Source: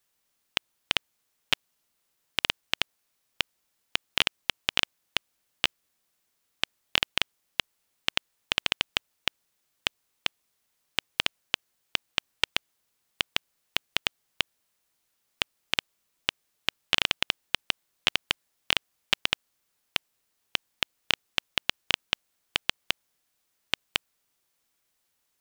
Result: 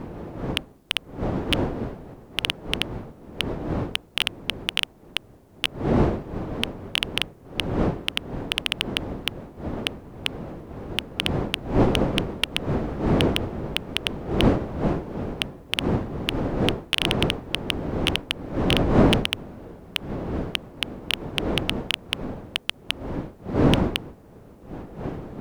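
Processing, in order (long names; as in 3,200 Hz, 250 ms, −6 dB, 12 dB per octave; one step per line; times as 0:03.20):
wind on the microphone 380 Hz −32 dBFS
harmonic generator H 5 −16 dB, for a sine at −1 dBFS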